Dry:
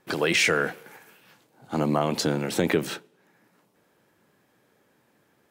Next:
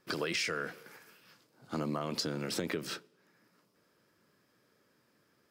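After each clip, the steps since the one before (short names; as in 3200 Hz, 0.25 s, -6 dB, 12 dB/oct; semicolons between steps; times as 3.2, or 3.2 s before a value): thirty-one-band EQ 800 Hz -8 dB, 1250 Hz +4 dB, 5000 Hz +10 dB; compressor 5:1, threshold -25 dBFS, peak gain reduction 8.5 dB; gain -6 dB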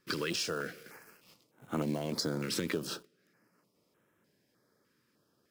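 in parallel at -5.5 dB: companded quantiser 4-bit; on the sum: stepped notch 3.3 Hz 710–4700 Hz; gain -1.5 dB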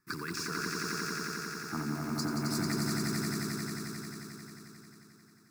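fixed phaser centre 1300 Hz, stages 4; swelling echo 89 ms, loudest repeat 5, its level -4 dB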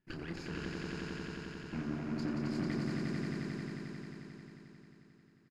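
minimum comb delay 0.44 ms; tape spacing loss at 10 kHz 25 dB; doubler 30 ms -7 dB; gain -1.5 dB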